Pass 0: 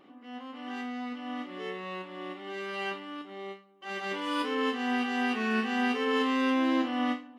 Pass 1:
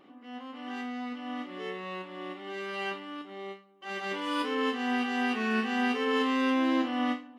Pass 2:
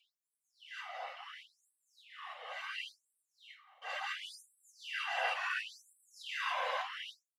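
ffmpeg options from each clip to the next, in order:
ffmpeg -i in.wav -af anull out.wav
ffmpeg -i in.wav -filter_complex "[0:a]asplit=2[link_01][link_02];[link_02]adelay=266,lowpass=frequency=2900:poles=1,volume=-17.5dB,asplit=2[link_03][link_04];[link_04]adelay=266,lowpass=frequency=2900:poles=1,volume=0.42,asplit=2[link_05][link_06];[link_06]adelay=266,lowpass=frequency=2900:poles=1,volume=0.42[link_07];[link_01][link_03][link_05][link_07]amix=inputs=4:normalize=0,afftfilt=real='hypot(re,im)*cos(2*PI*random(0))':imag='hypot(re,im)*sin(2*PI*random(1))':win_size=512:overlap=0.75,afftfilt=real='re*gte(b*sr/1024,470*pow(7700/470,0.5+0.5*sin(2*PI*0.71*pts/sr)))':imag='im*gte(b*sr/1024,470*pow(7700/470,0.5+0.5*sin(2*PI*0.71*pts/sr)))':win_size=1024:overlap=0.75,volume=3.5dB" out.wav

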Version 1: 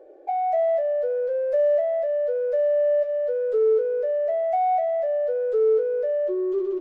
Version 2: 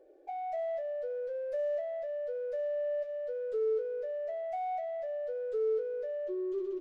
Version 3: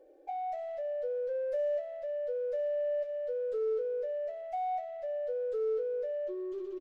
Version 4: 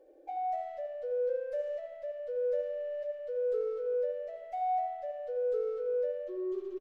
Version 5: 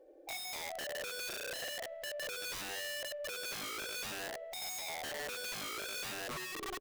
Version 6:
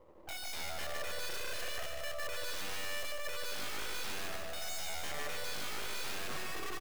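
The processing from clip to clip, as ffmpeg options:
ffmpeg -i in.wav -af "equalizer=frequency=790:width=0.48:gain=-9.5,volume=-4dB" out.wav
ffmpeg -i in.wav -af "aecho=1:1:3.8:0.43" out.wav
ffmpeg -i in.wav -filter_complex "[0:a]asplit=2[link_01][link_02];[link_02]adelay=81,lowpass=frequency=1600:poles=1,volume=-4dB,asplit=2[link_03][link_04];[link_04]adelay=81,lowpass=frequency=1600:poles=1,volume=0.53,asplit=2[link_05][link_06];[link_06]adelay=81,lowpass=frequency=1600:poles=1,volume=0.53,asplit=2[link_07][link_08];[link_08]adelay=81,lowpass=frequency=1600:poles=1,volume=0.53,asplit=2[link_09][link_10];[link_10]adelay=81,lowpass=frequency=1600:poles=1,volume=0.53,asplit=2[link_11][link_12];[link_12]adelay=81,lowpass=frequency=1600:poles=1,volume=0.53,asplit=2[link_13][link_14];[link_14]adelay=81,lowpass=frequency=1600:poles=1,volume=0.53[link_15];[link_01][link_03][link_05][link_07][link_09][link_11][link_13][link_15]amix=inputs=8:normalize=0,volume=-1.5dB" out.wav
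ffmpeg -i in.wav -af "aeval=exprs='(mod(70.8*val(0)+1,2)-1)/70.8':channel_layout=same" out.wav
ffmpeg -i in.wav -af "aeval=exprs='max(val(0),0)':channel_layout=same,aecho=1:1:150|285|406.5|515.8|614.3:0.631|0.398|0.251|0.158|0.1,volume=3dB" out.wav

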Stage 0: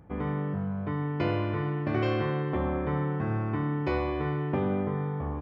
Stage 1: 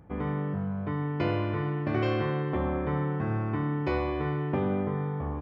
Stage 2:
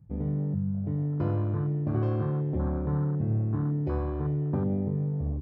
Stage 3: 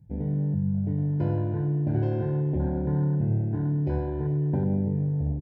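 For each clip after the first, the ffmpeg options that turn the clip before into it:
ffmpeg -i in.wav -af anull out.wav
ffmpeg -i in.wav -af "bass=frequency=250:gain=10,treble=frequency=4000:gain=8,afwtdn=0.0316,volume=-5.5dB" out.wav
ffmpeg -i in.wav -filter_complex "[0:a]asuperstop=centerf=1200:order=8:qfactor=2.9,asplit=2[link_01][link_02];[link_02]aecho=0:1:103|206|309|412|515:0.251|0.131|0.0679|0.0353|0.0184[link_03];[link_01][link_03]amix=inputs=2:normalize=0,volume=1dB" out.wav

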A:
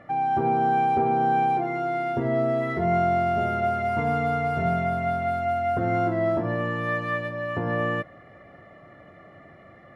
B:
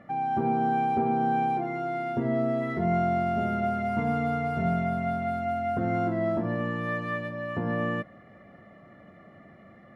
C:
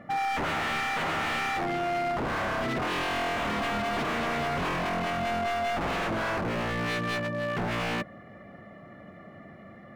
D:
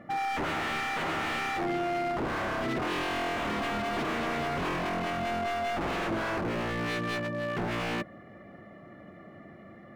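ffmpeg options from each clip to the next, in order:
ffmpeg -i in.wav -af "equalizer=frequency=210:width=2.9:gain=10.5,volume=-4.5dB" out.wav
ffmpeg -i in.wav -af "aeval=exprs='0.0376*(abs(mod(val(0)/0.0376+3,4)-2)-1)':channel_layout=same,volume=4dB" out.wav
ffmpeg -i in.wav -af "equalizer=frequency=340:width=2.9:gain=5.5,volume=-2.5dB" out.wav

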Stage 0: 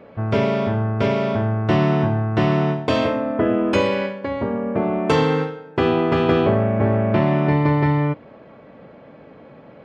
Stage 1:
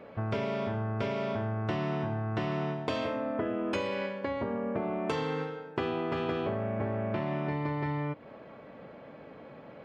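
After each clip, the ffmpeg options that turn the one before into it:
ffmpeg -i in.wav -af "lowshelf=frequency=450:gain=-4,acompressor=threshold=-27dB:ratio=5,volume=-2.5dB" out.wav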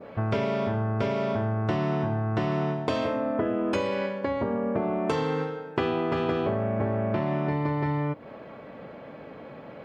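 ffmpeg -i in.wav -af "adynamicequalizer=threshold=0.00282:dfrequency=2700:dqfactor=0.84:tfrequency=2700:tqfactor=0.84:attack=5:release=100:ratio=0.375:range=2:mode=cutabove:tftype=bell,volume=5.5dB" out.wav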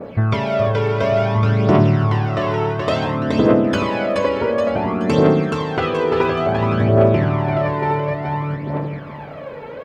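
ffmpeg -i in.wav -af "aecho=1:1:425|850|1275|1700|2125|2550:0.708|0.326|0.15|0.0689|0.0317|0.0146,aphaser=in_gain=1:out_gain=1:delay=2.3:decay=0.6:speed=0.57:type=triangular,volume=6dB" out.wav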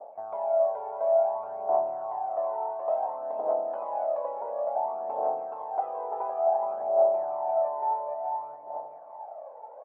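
ffmpeg -i in.wav -af "asuperpass=centerf=750:order=4:qfactor=3.5,volume=-1dB" out.wav

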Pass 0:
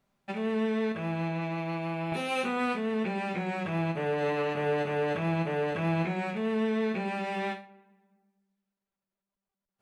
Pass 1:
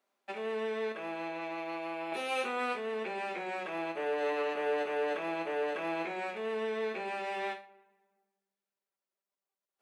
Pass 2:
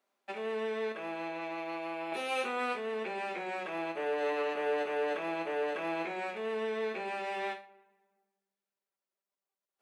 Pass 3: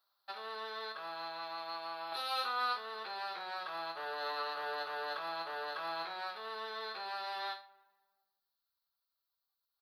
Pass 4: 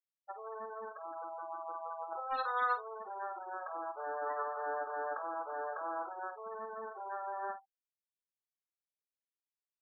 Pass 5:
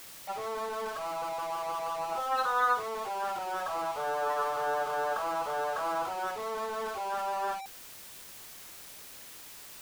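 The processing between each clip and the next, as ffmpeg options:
ffmpeg -i in.wav -af "highpass=frequency=320:width=0.5412,highpass=frequency=320:width=1.3066,volume=-2.5dB" out.wav
ffmpeg -i in.wav -af anull out.wav
ffmpeg -i in.wav -af "firequalizer=gain_entry='entry(100,0);entry(200,-27);entry(800,-8);entry(1300,0);entry(2300,-19);entry(4200,9);entry(7100,-25);entry(12000,3)':delay=0.05:min_phase=1,volume=5dB" out.wav
ffmpeg -i in.wav -filter_complex "[0:a]adynamicsmooth=sensitivity=2.5:basefreq=770,afftfilt=real='re*gte(hypot(re,im),0.01)':imag='im*gte(hypot(re,im),0.01)':win_size=1024:overlap=0.75,asplit=2[link_01][link_02];[link_02]adelay=49,volume=-11dB[link_03];[link_01][link_03]amix=inputs=2:normalize=0,volume=4.5dB" out.wav
ffmpeg -i in.wav -af "aeval=exprs='val(0)+0.5*0.00944*sgn(val(0))':channel_layout=same,volume=4.5dB" out.wav

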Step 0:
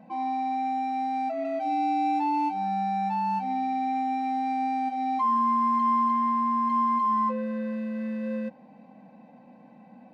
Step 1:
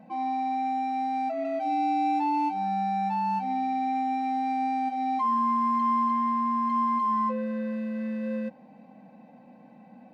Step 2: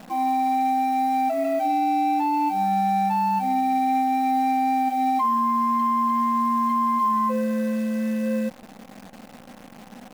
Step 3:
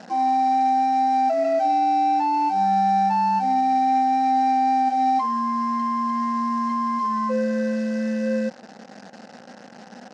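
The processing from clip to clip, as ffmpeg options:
ffmpeg -i in.wav -af "bandreject=frequency=1000:width=17" out.wav
ffmpeg -i in.wav -af "acrusher=bits=9:dc=4:mix=0:aa=0.000001,alimiter=limit=-22.5dB:level=0:latency=1,volume=6.5dB" out.wav
ffmpeg -i in.wav -af "highpass=220,equalizer=frequency=290:width_type=q:width=4:gain=-6,equalizer=frequency=1100:width_type=q:width=4:gain=-8,equalizer=frequency=1600:width_type=q:width=4:gain=4,equalizer=frequency=2300:width_type=q:width=4:gain=-8,equalizer=frequency=3400:width_type=q:width=4:gain=-7,equalizer=frequency=5200:width_type=q:width=4:gain=4,lowpass=frequency=6400:width=0.5412,lowpass=frequency=6400:width=1.3066,volume=4dB" out.wav

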